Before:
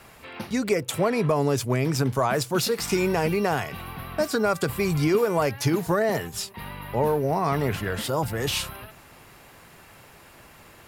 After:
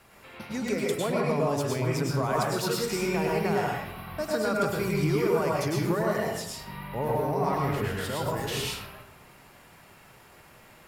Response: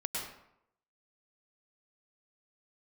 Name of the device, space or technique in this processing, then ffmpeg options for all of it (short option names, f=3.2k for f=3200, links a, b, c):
bathroom: -filter_complex "[1:a]atrim=start_sample=2205[a];[0:a][a]afir=irnorm=-1:irlink=0,volume=-6.5dB"